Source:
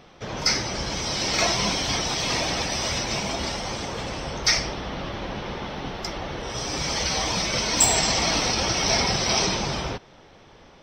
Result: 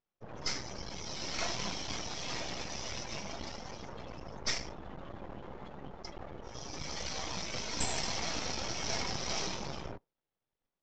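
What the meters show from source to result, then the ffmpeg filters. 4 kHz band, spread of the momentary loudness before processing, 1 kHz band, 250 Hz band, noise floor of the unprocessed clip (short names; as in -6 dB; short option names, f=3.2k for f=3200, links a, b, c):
-14.5 dB, 12 LU, -14.0 dB, -13.5 dB, -51 dBFS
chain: -af "afftdn=nr=30:nf=-32,aeval=exprs='max(val(0),0)':c=same,aresample=16000,aresample=44100,volume=-8.5dB"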